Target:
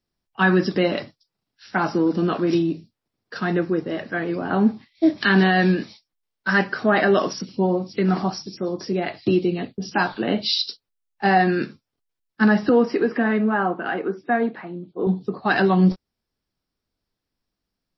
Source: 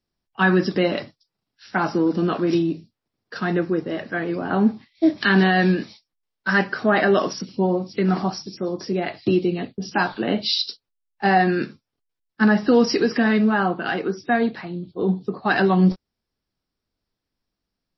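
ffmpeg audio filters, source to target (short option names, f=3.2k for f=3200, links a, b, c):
-filter_complex "[0:a]asettb=1/sr,asplit=3[a][b][c];[a]atrim=end=12.694[d];[b]atrim=start=12.69:end=15.07,asetpts=PTS-STARTPTS,afade=t=in:d=0.004:c=qsin,afade=t=out:st=2.376:d=0.004:c=qsin,highpass=210,lowpass=2k[e];[c]atrim=start=15.066[f];[d][e]acrossfade=d=0.004:c1=hsin:c2=qsin[g];[g][f]acrossfade=d=0.004:c1=qsin:c2=hsin"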